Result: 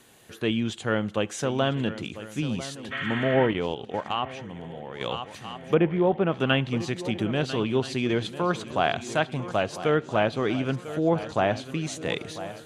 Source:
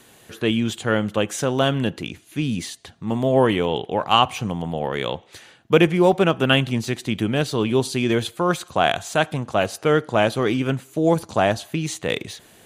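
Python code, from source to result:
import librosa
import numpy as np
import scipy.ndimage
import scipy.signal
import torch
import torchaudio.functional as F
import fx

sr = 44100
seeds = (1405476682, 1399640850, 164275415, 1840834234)

y = fx.spec_repair(x, sr, seeds[0], start_s=2.94, length_s=0.5, low_hz=1000.0, high_hz=5000.0, source='after')
y = fx.spacing_loss(y, sr, db_at_10k=30, at=(5.73, 6.31), fade=0.02)
y = fx.echo_swing(y, sr, ms=1329, ratio=3, feedback_pct=36, wet_db=-14)
y = fx.env_lowpass_down(y, sr, base_hz=2900.0, full_db=-12.5)
y = fx.level_steps(y, sr, step_db=11, at=(3.51, 5.01))
y = y * 10.0 ** (-5.0 / 20.0)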